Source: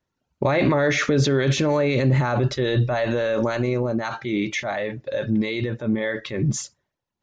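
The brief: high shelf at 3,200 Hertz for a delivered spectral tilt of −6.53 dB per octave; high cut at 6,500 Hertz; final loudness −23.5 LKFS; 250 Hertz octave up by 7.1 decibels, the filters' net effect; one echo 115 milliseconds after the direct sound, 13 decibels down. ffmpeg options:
ffmpeg -i in.wav -af "lowpass=6500,equalizer=frequency=250:width_type=o:gain=9,highshelf=frequency=3200:gain=-6.5,aecho=1:1:115:0.224,volume=-5dB" out.wav

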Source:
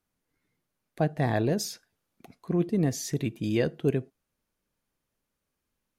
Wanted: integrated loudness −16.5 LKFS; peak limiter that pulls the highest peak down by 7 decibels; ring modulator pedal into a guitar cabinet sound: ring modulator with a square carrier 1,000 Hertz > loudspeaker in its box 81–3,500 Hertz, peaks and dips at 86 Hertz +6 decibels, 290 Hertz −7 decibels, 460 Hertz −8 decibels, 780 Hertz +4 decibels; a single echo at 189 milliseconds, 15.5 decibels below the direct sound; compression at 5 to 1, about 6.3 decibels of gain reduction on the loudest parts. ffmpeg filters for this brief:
ffmpeg -i in.wav -af "acompressor=threshold=-27dB:ratio=5,alimiter=limit=-23dB:level=0:latency=1,aecho=1:1:189:0.168,aeval=exprs='val(0)*sgn(sin(2*PI*1000*n/s))':channel_layout=same,highpass=81,equalizer=frequency=86:width_type=q:width=4:gain=6,equalizer=frequency=290:width_type=q:width=4:gain=-7,equalizer=frequency=460:width_type=q:width=4:gain=-8,equalizer=frequency=780:width_type=q:width=4:gain=4,lowpass=frequency=3500:width=0.5412,lowpass=frequency=3500:width=1.3066,volume=17dB" out.wav

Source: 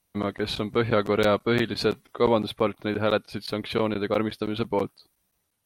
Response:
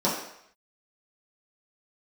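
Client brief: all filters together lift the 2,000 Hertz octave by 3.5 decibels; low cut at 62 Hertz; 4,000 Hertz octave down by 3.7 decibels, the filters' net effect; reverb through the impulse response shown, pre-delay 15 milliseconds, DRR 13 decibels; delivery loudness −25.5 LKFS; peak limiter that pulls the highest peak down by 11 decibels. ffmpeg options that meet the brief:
-filter_complex "[0:a]highpass=62,equalizer=frequency=2000:width_type=o:gain=6,equalizer=frequency=4000:width_type=o:gain=-6,alimiter=limit=-16.5dB:level=0:latency=1,asplit=2[link_01][link_02];[1:a]atrim=start_sample=2205,adelay=15[link_03];[link_02][link_03]afir=irnorm=-1:irlink=0,volume=-26.5dB[link_04];[link_01][link_04]amix=inputs=2:normalize=0,volume=4dB"

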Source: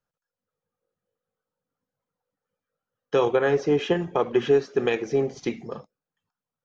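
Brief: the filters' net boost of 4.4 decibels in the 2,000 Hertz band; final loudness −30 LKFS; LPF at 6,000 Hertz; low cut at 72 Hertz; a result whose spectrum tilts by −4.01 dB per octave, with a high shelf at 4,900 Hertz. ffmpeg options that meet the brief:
ffmpeg -i in.wav -af "highpass=72,lowpass=6000,equalizer=frequency=2000:width_type=o:gain=5,highshelf=frequency=4900:gain=4,volume=-6.5dB" out.wav

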